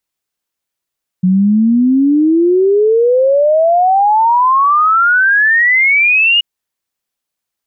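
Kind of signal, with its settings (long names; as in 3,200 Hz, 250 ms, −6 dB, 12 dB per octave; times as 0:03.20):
exponential sine sweep 180 Hz → 2,900 Hz 5.18 s −7 dBFS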